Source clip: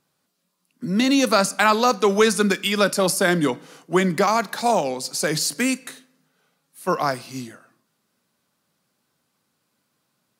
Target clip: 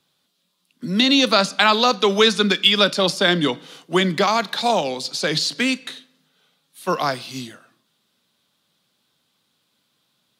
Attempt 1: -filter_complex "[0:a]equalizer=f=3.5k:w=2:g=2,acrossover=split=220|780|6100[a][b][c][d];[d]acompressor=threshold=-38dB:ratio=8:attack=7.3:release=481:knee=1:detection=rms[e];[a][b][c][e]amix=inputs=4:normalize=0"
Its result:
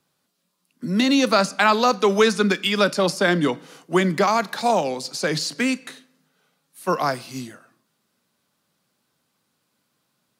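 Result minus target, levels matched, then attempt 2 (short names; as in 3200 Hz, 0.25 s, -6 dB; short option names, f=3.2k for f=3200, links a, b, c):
4000 Hz band -6.0 dB
-filter_complex "[0:a]equalizer=f=3.5k:w=2:g=13,acrossover=split=220|780|6100[a][b][c][d];[d]acompressor=threshold=-38dB:ratio=8:attack=7.3:release=481:knee=1:detection=rms[e];[a][b][c][e]amix=inputs=4:normalize=0"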